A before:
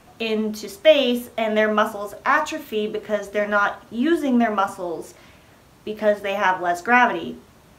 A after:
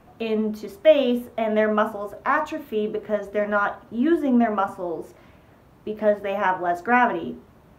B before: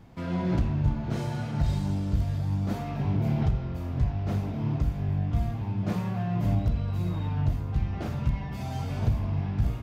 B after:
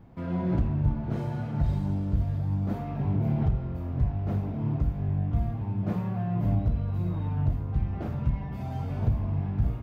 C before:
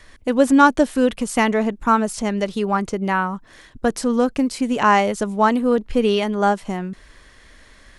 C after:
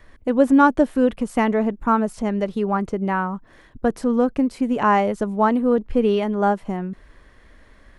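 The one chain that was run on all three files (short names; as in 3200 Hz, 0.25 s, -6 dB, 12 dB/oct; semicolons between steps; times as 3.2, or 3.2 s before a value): bell 6800 Hz -13.5 dB 2.9 oct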